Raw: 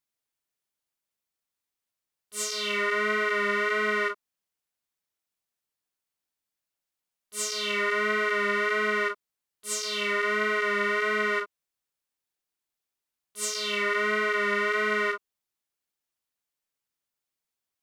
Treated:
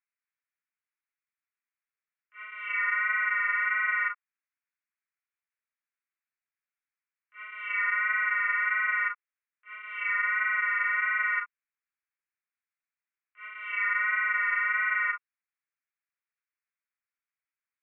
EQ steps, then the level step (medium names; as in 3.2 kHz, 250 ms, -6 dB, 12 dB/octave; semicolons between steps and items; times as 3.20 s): high-pass 1.3 kHz 24 dB/octave; steep low-pass 2.5 kHz 72 dB/octave; +2.0 dB